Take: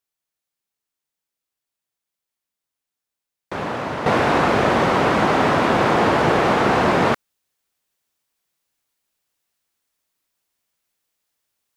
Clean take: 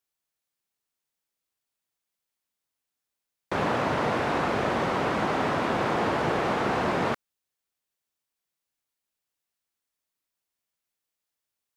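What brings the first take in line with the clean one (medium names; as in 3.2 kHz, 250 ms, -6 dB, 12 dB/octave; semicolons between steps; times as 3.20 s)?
trim 0 dB, from 4.06 s -9 dB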